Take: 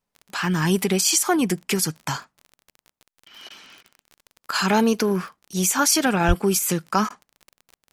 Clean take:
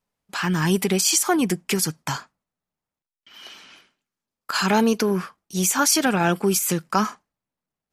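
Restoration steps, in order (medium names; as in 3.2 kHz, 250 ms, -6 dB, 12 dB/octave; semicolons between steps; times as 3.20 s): de-click; 6.27–6.39 s: high-pass 140 Hz 24 dB/octave; interpolate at 2.77/3.49/3.83/7.09 s, 11 ms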